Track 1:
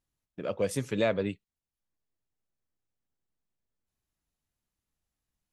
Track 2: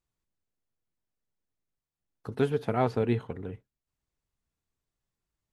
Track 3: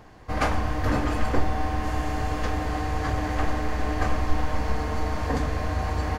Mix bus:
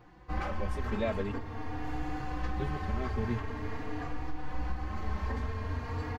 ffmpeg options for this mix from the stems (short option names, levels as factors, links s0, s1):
-filter_complex "[0:a]dynaudnorm=f=380:g=7:m=3.76,volume=0.422[s0];[1:a]equalizer=f=860:w=0.59:g=-14.5,adelay=200,volume=0.841[s1];[2:a]alimiter=limit=0.126:level=0:latency=1:release=419,flanger=delay=8.4:depth=8.4:regen=-43:speed=1.8:shape=sinusoidal,equalizer=f=620:w=5:g=-9.5,volume=1.12[s2];[s0][s1][s2]amix=inputs=3:normalize=0,equalizer=f=9900:t=o:w=1.6:g=-12,asplit=2[s3][s4];[s4]adelay=3.6,afreqshift=0.45[s5];[s3][s5]amix=inputs=2:normalize=1"